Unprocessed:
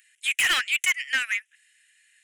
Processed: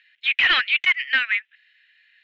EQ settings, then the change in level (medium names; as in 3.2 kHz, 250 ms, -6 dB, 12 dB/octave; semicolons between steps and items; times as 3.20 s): elliptic low-pass 4.1 kHz, stop band 70 dB; +5.0 dB